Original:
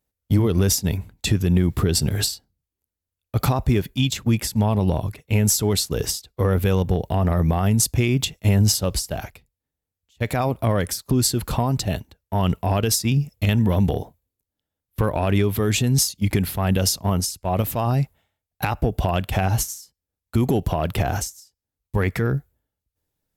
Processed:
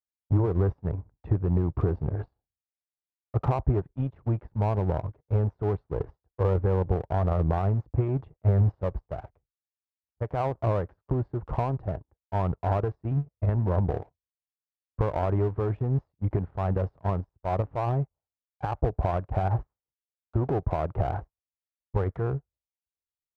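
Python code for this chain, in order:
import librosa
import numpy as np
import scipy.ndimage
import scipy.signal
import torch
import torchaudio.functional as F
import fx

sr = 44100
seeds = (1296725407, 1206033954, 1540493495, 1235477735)

y = scipy.signal.sosfilt(scipy.signal.butter(4, 1100.0, 'lowpass', fs=sr, output='sos'), x)
y = fx.peak_eq(y, sr, hz=220.0, db=-12.5, octaves=0.68)
y = fx.power_curve(y, sr, exponent=1.4)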